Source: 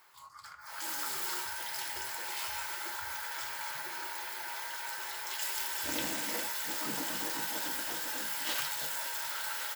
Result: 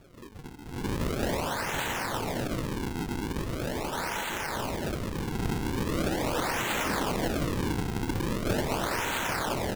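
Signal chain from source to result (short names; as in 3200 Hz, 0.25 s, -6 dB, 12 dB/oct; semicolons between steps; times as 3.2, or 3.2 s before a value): in parallel at -4 dB: hard clip -35.5 dBFS, distortion -10 dB; on the sum: decimation with a swept rate 42×, swing 160% 0.41 Hz; gain +3.5 dB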